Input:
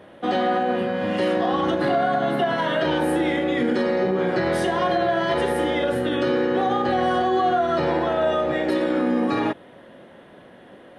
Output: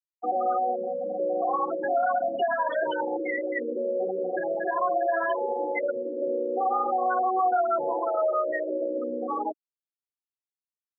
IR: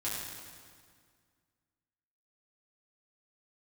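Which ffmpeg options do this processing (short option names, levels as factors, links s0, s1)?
-filter_complex "[0:a]afftfilt=real='re*gte(hypot(re,im),0.224)':imag='im*gte(hypot(re,im),0.224)':win_size=1024:overlap=0.75,highpass=730,asplit=2[s0][s1];[s1]alimiter=limit=0.0668:level=0:latency=1:release=158,volume=1.12[s2];[s0][s2]amix=inputs=2:normalize=0,volume=0.708"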